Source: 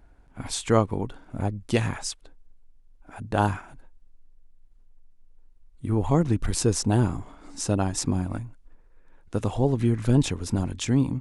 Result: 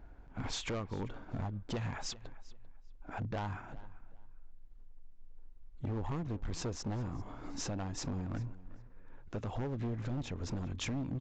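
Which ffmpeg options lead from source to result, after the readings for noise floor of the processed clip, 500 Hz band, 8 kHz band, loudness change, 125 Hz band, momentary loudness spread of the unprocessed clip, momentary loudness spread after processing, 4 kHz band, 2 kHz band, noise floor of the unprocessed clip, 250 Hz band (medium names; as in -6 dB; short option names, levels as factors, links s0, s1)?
-53 dBFS, -15.5 dB, -14.0 dB, -14.0 dB, -13.0 dB, 14 LU, 11 LU, -9.0 dB, -10.5 dB, -55 dBFS, -14.5 dB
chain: -filter_complex "[0:a]highshelf=f=3800:g=-10.5,acompressor=threshold=0.0251:ratio=5,volume=53.1,asoftclip=hard,volume=0.0188,asplit=2[s0][s1];[s1]adelay=393,lowpass=f=4300:p=1,volume=0.119,asplit=2[s2][s3];[s3]adelay=393,lowpass=f=4300:p=1,volume=0.24[s4];[s2][s4]amix=inputs=2:normalize=0[s5];[s0][s5]amix=inputs=2:normalize=0,aresample=16000,aresample=44100,volume=1.19"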